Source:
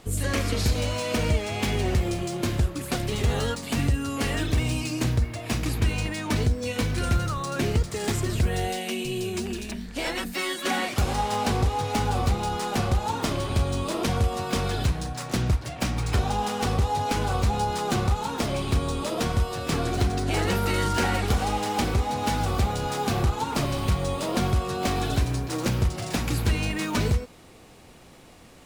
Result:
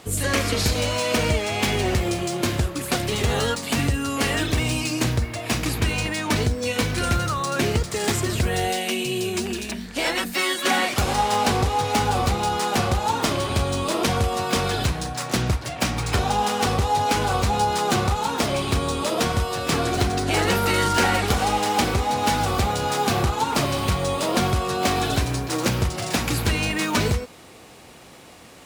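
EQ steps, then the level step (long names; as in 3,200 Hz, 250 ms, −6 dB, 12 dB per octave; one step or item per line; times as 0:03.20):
high-pass filter 55 Hz
low-shelf EQ 320 Hz −6 dB
+6.5 dB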